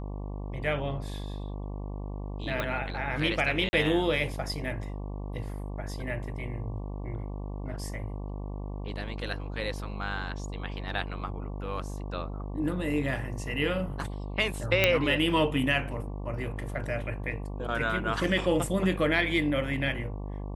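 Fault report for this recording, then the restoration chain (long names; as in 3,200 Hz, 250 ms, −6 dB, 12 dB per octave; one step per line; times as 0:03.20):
mains buzz 50 Hz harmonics 23 −36 dBFS
0:02.60: click −17 dBFS
0:03.69–0:03.73: drop-out 40 ms
0:14.84: click −7 dBFS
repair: click removal
hum removal 50 Hz, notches 23
repair the gap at 0:03.69, 40 ms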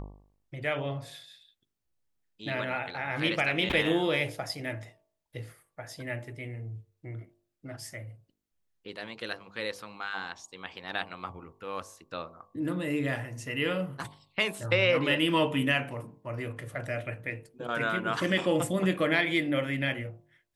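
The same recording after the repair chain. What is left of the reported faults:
none of them is left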